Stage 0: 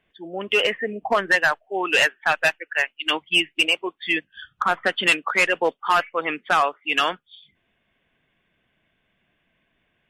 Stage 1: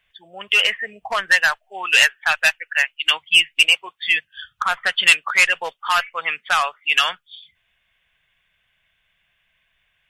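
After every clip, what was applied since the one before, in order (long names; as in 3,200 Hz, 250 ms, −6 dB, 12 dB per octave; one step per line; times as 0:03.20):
guitar amp tone stack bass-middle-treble 10-0-10
level +8.5 dB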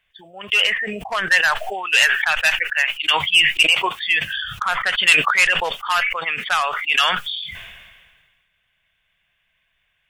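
level that may fall only so fast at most 36 dB per second
level −1.5 dB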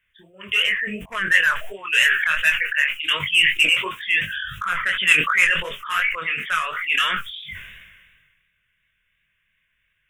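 phaser with its sweep stopped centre 1,900 Hz, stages 4
chorus effect 2.8 Hz, delay 20 ms, depth 5.3 ms
level +3 dB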